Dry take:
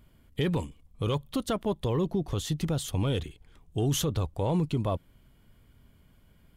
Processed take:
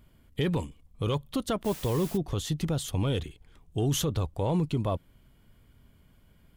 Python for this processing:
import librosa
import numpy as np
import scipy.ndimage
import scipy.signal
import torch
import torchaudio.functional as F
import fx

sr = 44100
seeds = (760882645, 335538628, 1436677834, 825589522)

y = fx.dmg_noise_colour(x, sr, seeds[0], colour='white', level_db=-44.0, at=(1.64, 2.16), fade=0.02)